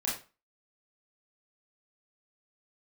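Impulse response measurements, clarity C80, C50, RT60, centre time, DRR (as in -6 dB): 11.0 dB, 5.5 dB, 0.30 s, 36 ms, -6.0 dB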